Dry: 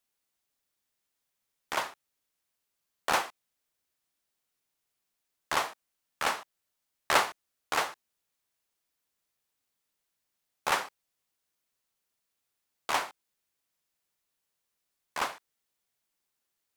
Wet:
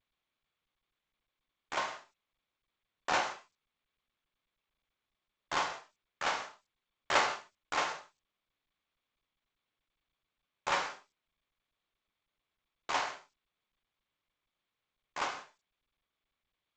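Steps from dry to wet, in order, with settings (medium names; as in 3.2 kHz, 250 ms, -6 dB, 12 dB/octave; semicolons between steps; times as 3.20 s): gate with hold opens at -37 dBFS; gated-style reverb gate 200 ms falling, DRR 1.5 dB; trim -5 dB; G.722 64 kbps 16 kHz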